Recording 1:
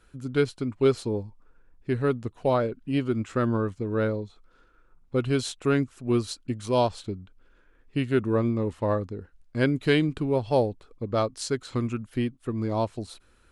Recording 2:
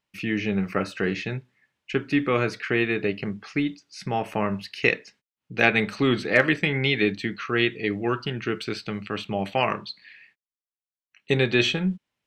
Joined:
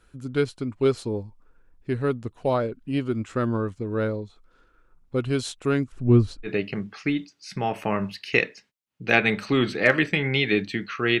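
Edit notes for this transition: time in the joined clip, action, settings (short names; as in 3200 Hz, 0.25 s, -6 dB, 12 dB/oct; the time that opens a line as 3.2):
recording 1
5.92–6.49 RIAA curve playback
6.46 switch to recording 2 from 2.96 s, crossfade 0.06 s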